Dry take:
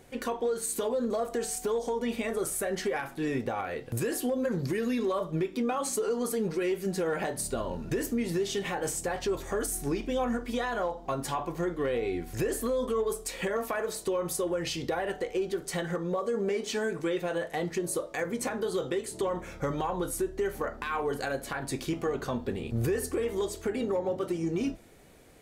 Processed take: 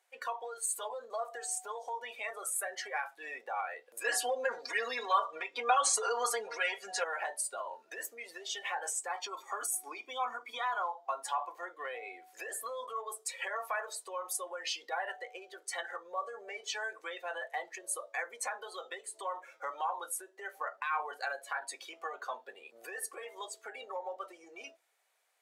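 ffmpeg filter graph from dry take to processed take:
-filter_complex "[0:a]asettb=1/sr,asplit=3[s0][s1][s2];[s0]atrim=end=4.044[s3];[s1]atrim=start=4.04:end=7.04,asetpts=PTS-STARTPTS,afade=t=in:d=0.004:c=qsin,afade=t=out:st=2.996:d=0.004:c=qsin,lowpass=8200,acontrast=40,aecho=1:1:4.2:0.85,atrim=end_sample=132300[s4];[s2]atrim=start=7.036[s5];[s3][s4]acrossfade=d=0.004:c1=hsin:c2=qsin[s6];[s6][s5]acrossfade=d=0.004:c1=qsin:c2=hsin,asettb=1/sr,asplit=3[s7][s8][s9];[s7]atrim=end=9.074[s10];[s8]atrim=start=9.07:end=10.96,asetpts=PTS-STARTPTS,afade=t=in:d=0.004:c=qsin,afade=t=out:st=1.886:d=0.004:c=qsin,highpass=f=250:t=q:w=1.8,aecho=1:1:0.9:0.45,atrim=end_sample=83349[s11];[s9]atrim=start=10.956[s12];[s10][s11]acrossfade=d=0.004:c1=hsin:c2=qsin[s13];[s13][s12]acrossfade=d=0.004:c1=qsin:c2=hsin,afftdn=nr=15:nf=-39,highpass=f=740:w=0.5412,highpass=f=740:w=1.3066"

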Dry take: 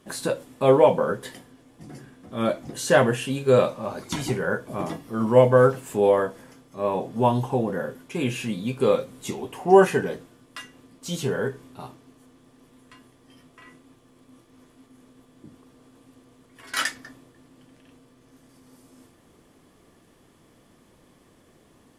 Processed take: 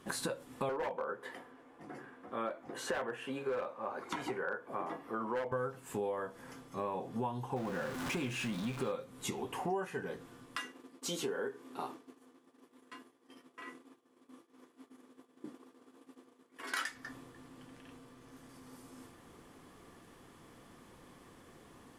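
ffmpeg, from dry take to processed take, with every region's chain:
-filter_complex "[0:a]asettb=1/sr,asplit=3[s0][s1][s2];[s0]atrim=end=0.694[s3];[s1]atrim=start=0.69:end=5.52,asetpts=PTS-STARTPTS,afade=t=in:d=0.004:c=qsin,afade=t=out:st=4.826:d=0.004:c=qsin,acrossover=split=290 2400:gain=0.141 1 0.2[s4][s5][s6];[s4][s5][s6]amix=inputs=3:normalize=0,asoftclip=type=hard:threshold=0.168[s7];[s2]atrim=start=5.516[s8];[s3][s7]acrossfade=d=0.004:c1=hsin:c2=qsin[s9];[s9][s8]acrossfade=d=0.004:c1=qsin:c2=hsin,asettb=1/sr,asplit=3[s10][s11][s12];[s10]atrim=end=7.564[s13];[s11]atrim=start=7.56:end=8.92,asetpts=PTS-STARTPTS,afade=t=in:d=0.004:c=qsin,afade=t=out:st=1.356:d=0.004:c=qsin,aeval=exprs='val(0)+0.5*0.0335*sgn(val(0))':c=same,acrossover=split=9500[s14][s15];[s15]acompressor=threshold=0.00447:ratio=4:attack=1:release=60[s16];[s14][s16]amix=inputs=2:normalize=0,bandreject=f=450:w=7.5[s17];[s12]atrim=start=8.916[s18];[s13][s17]acrossfade=d=0.004:c1=hsin:c2=qsin[s19];[s19][s18]acrossfade=d=0.004:c1=qsin:c2=hsin,asettb=1/sr,asplit=3[s20][s21][s22];[s20]atrim=end=10.584[s23];[s21]atrim=start=10.58:end=16.86,asetpts=PTS-STARTPTS,afade=t=in:d=0.004:c=qsin,afade=t=out:st=6.276:d=0.004:c=qsin,highpass=f=310:t=q:w=1.6,agate=range=0.0224:threshold=0.00447:ratio=3:release=100:detection=peak[s24];[s22]atrim=start=16.856[s25];[s23][s24]acrossfade=d=0.004:c1=hsin:c2=qsin[s26];[s26][s25]acrossfade=d=0.004:c1=qsin:c2=hsin,equalizer=f=1200:w=0.8:g=5,bandreject=f=620:w=12,acompressor=threshold=0.02:ratio=6,volume=0.841"

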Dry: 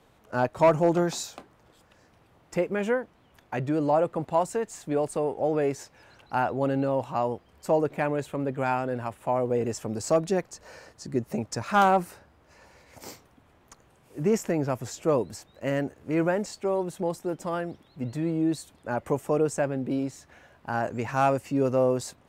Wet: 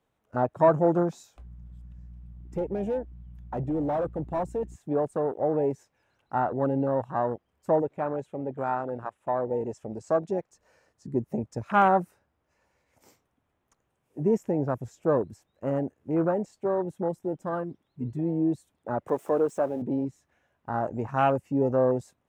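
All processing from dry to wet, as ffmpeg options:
-filter_complex "[0:a]asettb=1/sr,asplit=3[s0][s1][s2];[s0]atrim=end=1.374[s3];[s1]atrim=start=1.37:end=4.76,asetpts=PTS-STARTPTS,afade=t=in:d=0.004:c=qsin,afade=t=out:st=3.386:d=0.004:c=qsin,aeval=exprs='val(0)+0.00794*(sin(2*PI*60*n/s)+sin(2*PI*2*60*n/s)/2+sin(2*PI*3*60*n/s)/3+sin(2*PI*4*60*n/s)/4+sin(2*PI*5*60*n/s)/5)':c=same,volume=16.8,asoftclip=hard,volume=0.0596[s4];[s2]atrim=start=4.756[s5];[s3][s4]acrossfade=d=0.004:c1=hsin:c2=qsin[s6];[s6][s5]acrossfade=d=0.004:c1=qsin:c2=hsin,asettb=1/sr,asplit=3[s7][s8][s9];[s7]atrim=end=7.824[s10];[s8]atrim=start=7.82:end=10.51,asetpts=PTS-STARTPTS,afade=t=in:d=0.004:c=qsin,afade=t=out:st=2.686:d=0.004:c=qsin,lowpass=9100,lowshelf=f=330:g=-7[s11];[s9]atrim=start=10.506[s12];[s10][s11]acrossfade=d=0.004:c1=hsin:c2=qsin[s13];[s13][s12]acrossfade=d=0.004:c1=qsin:c2=hsin,asettb=1/sr,asplit=3[s14][s15][s16];[s14]atrim=end=19.084[s17];[s15]atrim=start=19.08:end=19.82,asetpts=PTS-STARTPTS,afade=t=in:d=0.004:c=qsin,afade=t=out:st=0.736:d=0.004:c=qsin,aeval=exprs='val(0)+0.5*0.0188*sgn(val(0))':c=same,highpass=280[s18];[s16]atrim=start=19.816[s19];[s17][s18]acrossfade=d=0.004:c1=hsin:c2=qsin[s20];[s20][s19]acrossfade=d=0.004:c1=qsin:c2=hsin,afwtdn=0.0355,equalizer=f=4500:t=o:w=0.31:g=-5.5"

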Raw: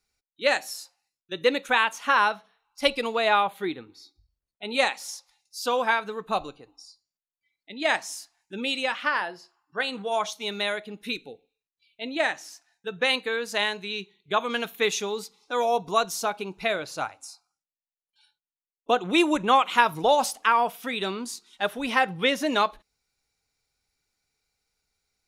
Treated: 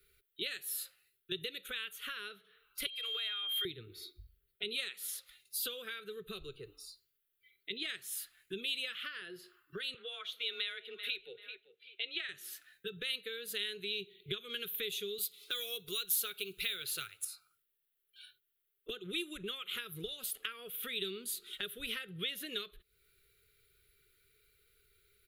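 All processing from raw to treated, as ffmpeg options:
-filter_complex "[0:a]asettb=1/sr,asplit=3[s0][s1][s2];[s0]atrim=end=2.864[s3];[s1]atrim=start=2.86:end=3.65,asetpts=PTS-STARTPTS,afade=t=in:d=0.004:c=qsin,afade=t=out:st=0.786:d=0.004:c=qsin,highpass=f=700:w=0.5412,highpass=f=700:w=1.3066,acompressor=threshold=0.0251:ratio=6:attack=3.2:release=140:knee=1:detection=peak,aeval=exprs='val(0)+0.0126*sin(2*PI*3200*n/s)':c=same[s4];[s2]atrim=start=3.646[s5];[s3][s4]acrossfade=d=0.004:c1=hsin:c2=qsin[s6];[s6][s5]acrossfade=d=0.004:c1=qsin:c2=hsin,asettb=1/sr,asplit=3[s7][s8][s9];[s7]atrim=end=9.944[s10];[s8]atrim=start=9.94:end=12.29,asetpts=PTS-STARTPTS,afade=t=in:d=0.004:c=qsin,afade=t=out:st=2.346:d=0.004:c=qsin,acrossover=split=560 4400:gain=0.112 1 0.158[s11][s12][s13];[s11][s12][s13]amix=inputs=3:normalize=0,aecho=1:1:387|774:0.0794|0.0183,atrim=end_sample=103635,afreqshift=20[s14];[s9]atrim=start=12.286[s15];[s10][s14]acrossfade=d=0.004:c1=hsin:c2=qsin[s16];[s16][s15]acrossfade=d=0.004:c1=qsin:c2=hsin,asettb=1/sr,asplit=3[s17][s18][s19];[s17]atrim=end=15.184[s20];[s18]atrim=start=15.18:end=17.25,asetpts=PTS-STARTPTS,afade=t=in:d=0.004:c=qsin,afade=t=out:st=2.066:d=0.004:c=qsin,tiltshelf=f=1300:g=-8,acrusher=bits=7:mode=log:mix=0:aa=0.000001[s21];[s19]atrim=start=17.246[s22];[s20][s21]acrossfade=d=0.004:c1=hsin:c2=qsin[s23];[s23][s22]acrossfade=d=0.004:c1=qsin:c2=hsin,acompressor=threshold=0.00891:ratio=3,firequalizer=gain_entry='entry(120,0);entry(270,-17);entry(390,9);entry(590,-15);entry(870,-29);entry(1300,-1);entry(2400,-2);entry(3300,3);entry(5500,-18);entry(12000,7)':delay=0.05:min_phase=1,acrossover=split=210|3000[s24][s25][s26];[s25]acompressor=threshold=0.00158:ratio=6[s27];[s24][s27][s26]amix=inputs=3:normalize=0,volume=2.99"

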